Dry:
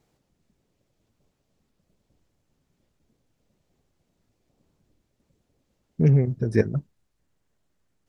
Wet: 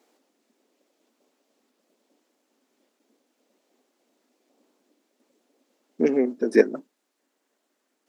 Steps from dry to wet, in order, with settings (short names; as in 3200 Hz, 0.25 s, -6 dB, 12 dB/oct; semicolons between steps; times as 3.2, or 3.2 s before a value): elliptic high-pass 250 Hz, stop band 50 dB; gain +6.5 dB